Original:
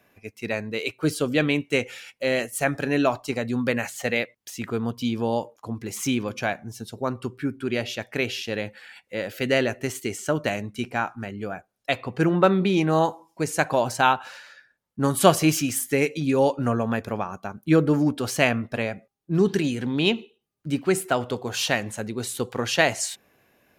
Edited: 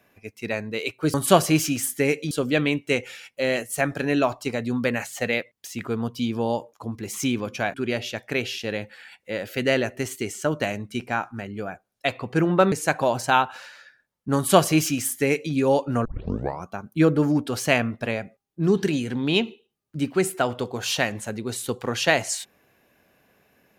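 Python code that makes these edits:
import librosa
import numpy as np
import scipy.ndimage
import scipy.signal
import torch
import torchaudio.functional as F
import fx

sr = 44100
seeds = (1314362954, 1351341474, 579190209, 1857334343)

y = fx.edit(x, sr, fx.cut(start_s=6.57, length_s=1.01),
    fx.cut(start_s=12.56, length_s=0.87),
    fx.duplicate(start_s=15.07, length_s=1.17, to_s=1.14),
    fx.tape_start(start_s=16.76, length_s=0.62), tone=tone)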